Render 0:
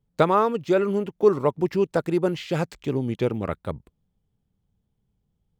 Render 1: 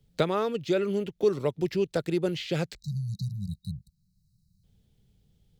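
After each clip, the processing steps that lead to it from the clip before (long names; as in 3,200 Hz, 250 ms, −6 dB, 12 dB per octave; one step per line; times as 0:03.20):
graphic EQ with 10 bands 250 Hz −4 dB, 1,000 Hz −11 dB, 4,000 Hz +6 dB
time-frequency box erased 0:02.76–0:04.64, 210–3,800 Hz
multiband upward and downward compressor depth 40%
level −2 dB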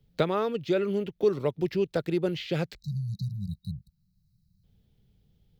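parametric band 8,000 Hz −9 dB 1 octave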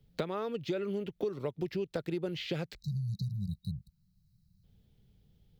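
downward compressor 6 to 1, threshold −31 dBFS, peak gain reduction 12.5 dB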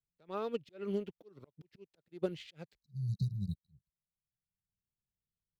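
phase distortion by the signal itself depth 0.08 ms
volume swells 161 ms
expander for the loud parts 2.5 to 1, over −55 dBFS
level +3.5 dB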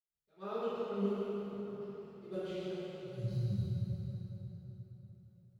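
convolution reverb RT60 4.3 s, pre-delay 77 ms
level −3 dB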